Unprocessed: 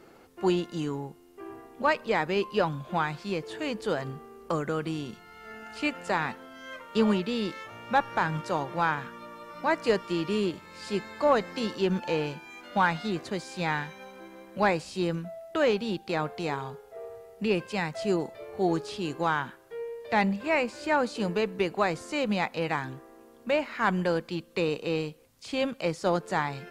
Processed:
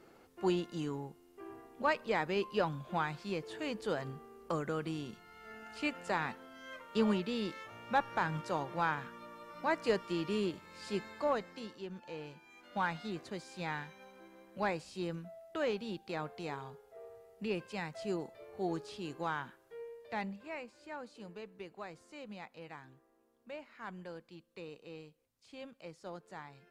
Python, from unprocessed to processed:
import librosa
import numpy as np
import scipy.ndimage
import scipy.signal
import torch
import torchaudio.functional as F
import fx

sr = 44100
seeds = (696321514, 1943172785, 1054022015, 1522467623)

y = fx.gain(x, sr, db=fx.line((11.08, -6.5), (11.91, -19.0), (12.84, -10.0), (19.84, -10.0), (20.74, -20.0)))